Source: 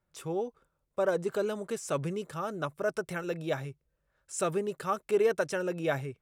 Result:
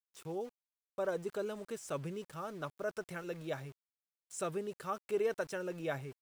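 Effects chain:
centre clipping without the shift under −45.5 dBFS
level −7.5 dB

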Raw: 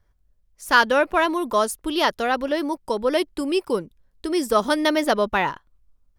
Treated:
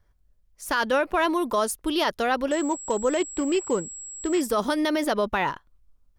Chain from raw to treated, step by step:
brickwall limiter −14 dBFS, peak gain reduction 11 dB
0:02.51–0:04.41: switching amplifier with a slow clock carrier 7,700 Hz

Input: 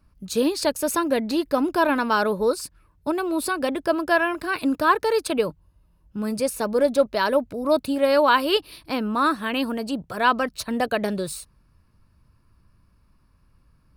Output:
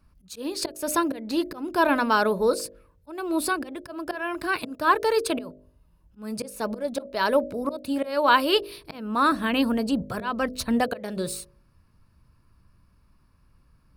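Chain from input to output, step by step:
volume swells 291 ms
0:09.32–0:10.79: low-shelf EQ 180 Hz +10.5 dB
hum removal 50.67 Hz, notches 13

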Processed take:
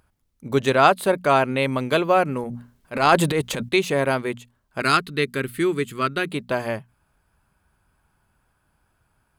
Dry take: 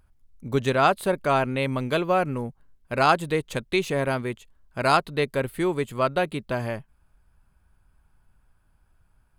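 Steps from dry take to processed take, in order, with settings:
high-pass filter 150 Hz 6 dB per octave
mains-hum notches 60/120/180/240 Hz
0:02.43–0:03.69: transient designer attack −8 dB, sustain +10 dB
0:04.80–0:06.29: flat-topped bell 710 Hz −13 dB 1.2 octaves
level +4.5 dB

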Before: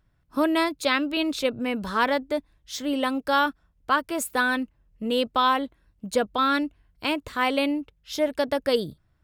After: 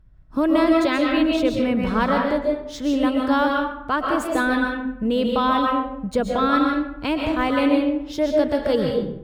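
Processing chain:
running median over 3 samples
spectral tilt −2 dB per octave
in parallel at +1.5 dB: brickwall limiter −16 dBFS, peak gain reduction 8 dB
on the sum: low-shelf EQ 140 Hz +4.5 dB
convolution reverb RT60 0.80 s, pre-delay 95 ms, DRR 0 dB
level −5.5 dB

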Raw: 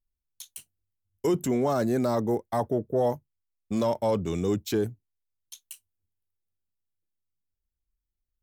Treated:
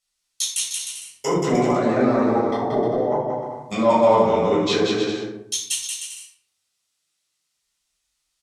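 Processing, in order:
treble cut that deepens with the level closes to 1,300 Hz, closed at −25 dBFS
meter weighting curve ITU-R 468
0:01.30–0:03.85: compressor whose output falls as the input rises −34 dBFS, ratio −0.5
bouncing-ball delay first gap 180 ms, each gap 0.7×, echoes 5
rectangular room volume 830 cubic metres, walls furnished, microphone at 6.6 metres
level +5 dB

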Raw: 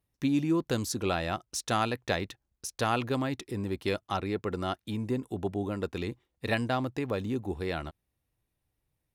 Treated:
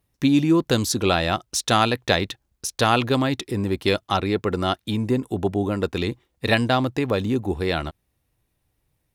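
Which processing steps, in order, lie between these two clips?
dynamic equaliser 3,600 Hz, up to +5 dB, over −50 dBFS, Q 2.3
level +9 dB

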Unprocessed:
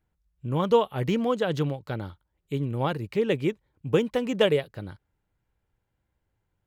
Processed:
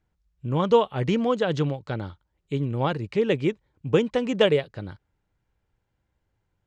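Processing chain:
low-pass filter 7,500 Hz 24 dB per octave
level +2 dB

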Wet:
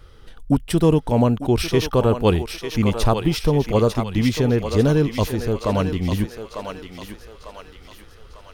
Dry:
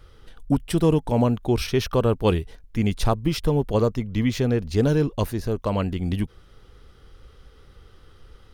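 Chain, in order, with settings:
feedback echo with a high-pass in the loop 898 ms, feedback 51%, high-pass 590 Hz, level −5.5 dB
level +3 dB

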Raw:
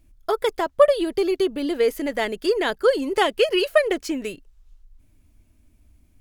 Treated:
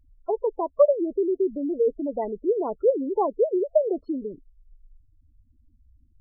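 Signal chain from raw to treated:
Savitzky-Golay smoothing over 65 samples
gate on every frequency bin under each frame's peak −15 dB strong
level −2 dB

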